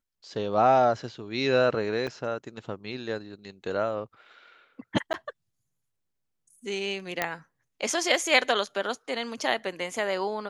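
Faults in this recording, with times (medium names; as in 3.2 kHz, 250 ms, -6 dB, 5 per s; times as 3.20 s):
2.07–2.08 s: dropout 5.7 ms
5.13–5.14 s: dropout 9.6 ms
7.22 s: pop -10 dBFS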